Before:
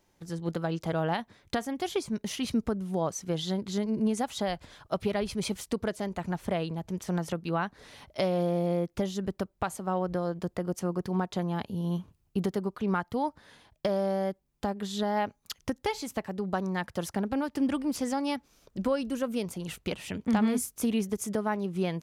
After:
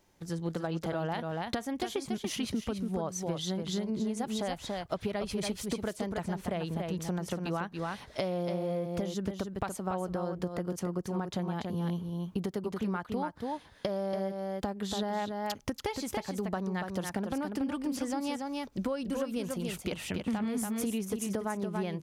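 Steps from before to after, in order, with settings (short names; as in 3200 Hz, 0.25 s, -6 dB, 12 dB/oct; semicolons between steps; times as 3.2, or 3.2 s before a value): echo 0.284 s -6.5 dB; compressor, threshold -31 dBFS, peak gain reduction 10.5 dB; gain +1.5 dB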